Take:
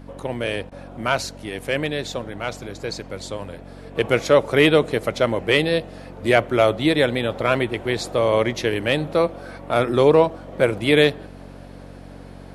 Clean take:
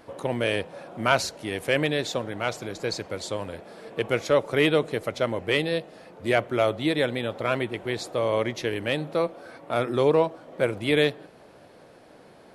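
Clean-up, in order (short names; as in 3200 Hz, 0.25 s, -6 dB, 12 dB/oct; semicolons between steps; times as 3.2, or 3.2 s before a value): de-hum 46.7 Hz, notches 6; interpolate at 0.7, 14 ms; gain correction -6 dB, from 3.95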